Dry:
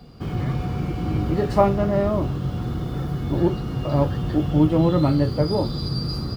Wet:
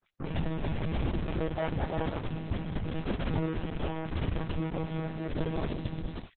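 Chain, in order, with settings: fade out at the end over 0.61 s; band-stop 510 Hz, Q 17; dynamic bell 120 Hz, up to +4 dB, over -30 dBFS, Q 1.4; compression 4:1, threshold -21 dBFS, peak gain reduction 9 dB; flange 0.94 Hz, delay 3.6 ms, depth 4.5 ms, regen -36%; companded quantiser 2-bit; chorus 1.9 Hz, delay 16.5 ms, depth 6.8 ms; distance through air 96 m; bands offset in time lows, highs 40 ms, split 1.4 kHz; monotone LPC vocoder at 8 kHz 160 Hz; Opus 6 kbps 48 kHz

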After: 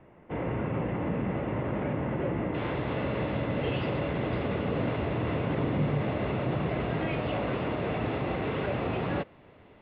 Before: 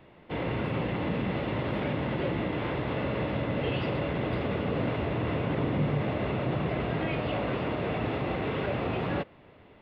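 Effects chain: Bessel low-pass 1.7 kHz, order 8, from 2.53 s 4.1 kHz

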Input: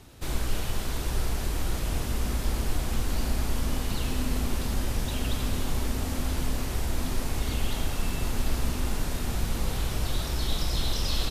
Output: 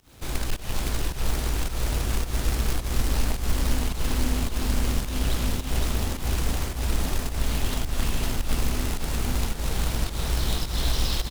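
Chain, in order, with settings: companded quantiser 4-bit; volume shaper 107 bpm, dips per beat 1, -22 dB, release 180 ms; on a send: feedback delay 513 ms, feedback 34%, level -3 dB; on the sum: loudspeaker Doppler distortion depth 0.3 ms

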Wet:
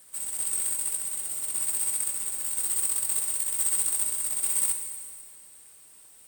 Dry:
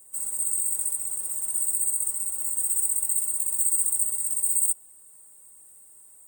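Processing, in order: companded quantiser 4-bit; Schroeder reverb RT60 2 s, combs from 32 ms, DRR 6 dB; trim -3.5 dB

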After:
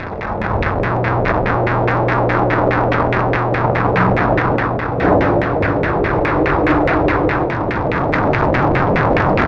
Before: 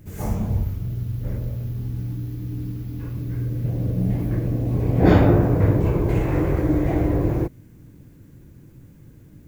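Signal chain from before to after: one-bit delta coder 32 kbps, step -18 dBFS; on a send: delay 529 ms -12 dB; on the sum: LFO low-pass saw down 4.8 Hz 490–2200 Hz; level rider gain up to 11.5 dB; bass shelf 300 Hz -10.5 dB; band-stop 3 kHz, Q 8.3; de-hum 85.83 Hz, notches 17; loudspeaker Doppler distortion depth 0.22 ms; trim +4 dB

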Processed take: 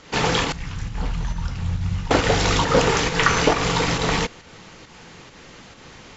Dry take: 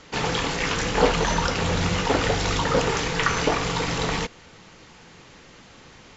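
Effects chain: 0.52–2.11 s: FFT filter 110 Hz 0 dB, 470 Hz -26 dB, 840 Hz -18 dB; in parallel at +3 dB: volume shaper 136 bpm, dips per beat 1, -15 dB, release 151 ms; on the sum: trim -3 dB

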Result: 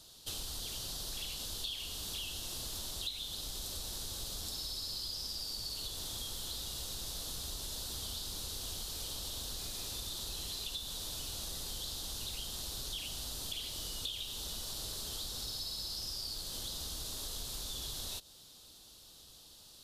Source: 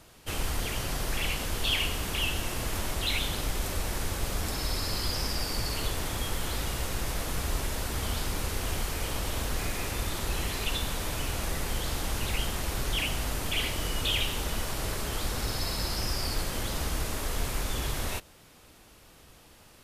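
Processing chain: resonant high shelf 2.9 kHz +9.5 dB, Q 3; compression 6:1, threshold -29 dBFS, peak gain reduction 16.5 dB; trim -9 dB

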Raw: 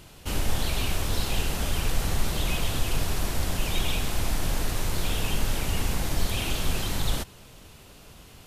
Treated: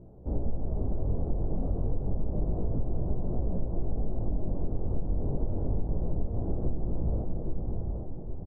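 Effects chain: inverse Chebyshev low-pass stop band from 2.8 kHz, stop band 70 dB; echo that smears into a reverb 646 ms, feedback 48%, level -9 dB; chorus 0.3 Hz, delay 16.5 ms, depth 5.8 ms; feedback delay 817 ms, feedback 35%, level -8.5 dB; compression, threshold -27 dBFS, peak gain reduction 9 dB; trim +4.5 dB

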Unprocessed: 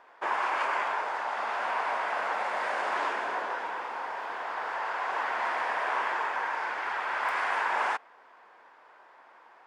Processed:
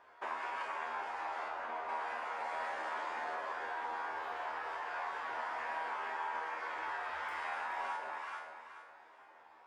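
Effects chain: peaking EQ 82 Hz +11 dB 0.63 oct; reverberation RT60 0.60 s, pre-delay 10 ms, DRR 8 dB; reverb removal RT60 0.76 s; 1.48–1.89 s: low-pass 1.5 kHz 6 dB/octave; echo whose repeats swap between lows and highs 214 ms, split 830 Hz, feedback 55%, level -4 dB; compression, threshold -33 dBFS, peak gain reduction 8.5 dB; feedback comb 80 Hz, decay 0.57 s, harmonics all, mix 90%; trim +6.5 dB

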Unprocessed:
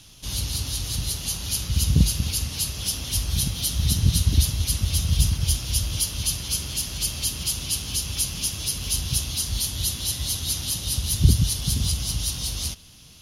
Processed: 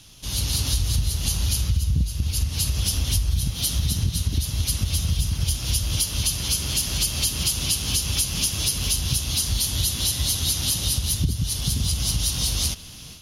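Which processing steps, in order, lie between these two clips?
level rider gain up to 9 dB; 0.73–3.50 s: peaking EQ 63 Hz +10 dB 2 oct; compression 8:1, threshold -19 dBFS, peak gain reduction 18 dB

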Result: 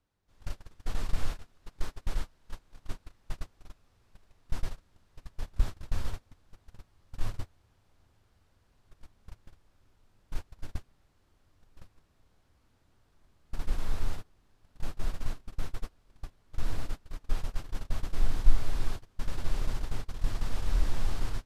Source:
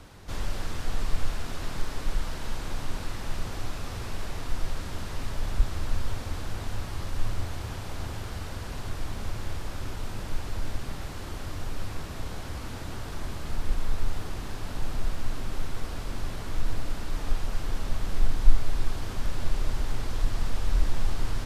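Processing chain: gate -23 dBFS, range -29 dB; trim -3 dB

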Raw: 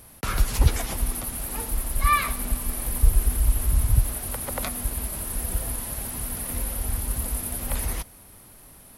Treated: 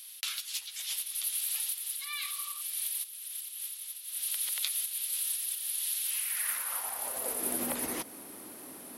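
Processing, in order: spectral replace 2.24–2.58 s, 430–1500 Hz before; compression 6:1, threshold -29 dBFS, peak gain reduction 16.5 dB; high-pass sweep 3.4 kHz -> 290 Hz, 6.02–7.59 s; trim +2.5 dB

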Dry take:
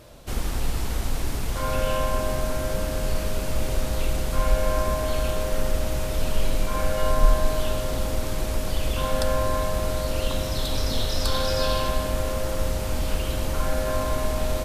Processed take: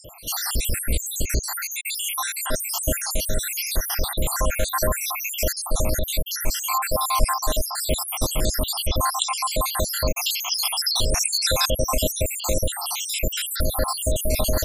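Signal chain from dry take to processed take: random holes in the spectrogram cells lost 79%; treble shelf 3.4 kHz +12 dB; in parallel at -1 dB: compressor with a negative ratio -27 dBFS, ratio -0.5; on the sum: trim +1.5 dB

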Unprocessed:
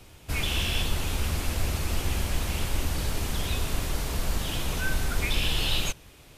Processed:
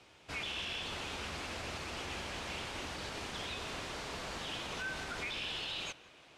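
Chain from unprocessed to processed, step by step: high-pass 540 Hz 6 dB/octave; peak limiter -25.5 dBFS, peak gain reduction 7.5 dB; distance through air 100 m; on a send: tape echo 172 ms, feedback 88%, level -19.5 dB, low-pass 3.2 kHz; on the sum: trim -3 dB

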